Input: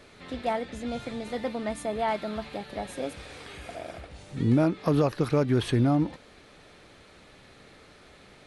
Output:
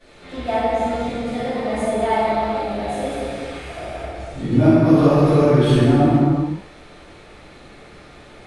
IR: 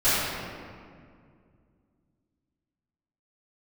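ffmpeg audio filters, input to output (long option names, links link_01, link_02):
-filter_complex "[1:a]atrim=start_sample=2205,afade=type=out:start_time=0.33:duration=0.01,atrim=end_sample=14994,asetrate=22932,aresample=44100[link_01];[0:a][link_01]afir=irnorm=-1:irlink=0,volume=-12.5dB"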